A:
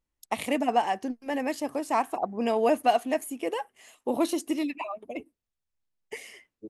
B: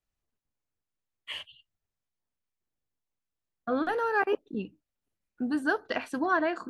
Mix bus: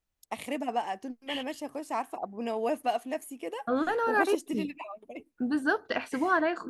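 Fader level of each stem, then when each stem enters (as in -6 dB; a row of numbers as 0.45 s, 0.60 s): -6.5 dB, +0.5 dB; 0.00 s, 0.00 s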